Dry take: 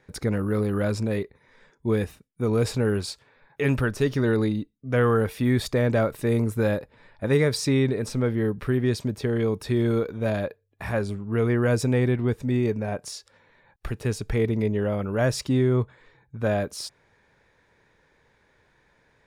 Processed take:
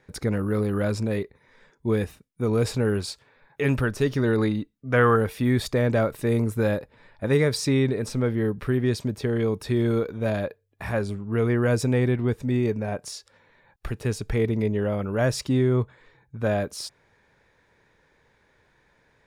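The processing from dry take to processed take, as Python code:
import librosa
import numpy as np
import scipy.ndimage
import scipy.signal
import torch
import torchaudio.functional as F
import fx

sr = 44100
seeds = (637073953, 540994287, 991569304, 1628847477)

y = fx.peak_eq(x, sr, hz=1400.0, db=6.5, octaves=1.9, at=(4.38, 5.16))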